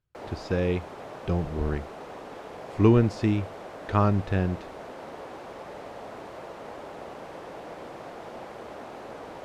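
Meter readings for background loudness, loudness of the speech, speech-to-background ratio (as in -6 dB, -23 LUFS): -41.0 LUFS, -26.0 LUFS, 15.0 dB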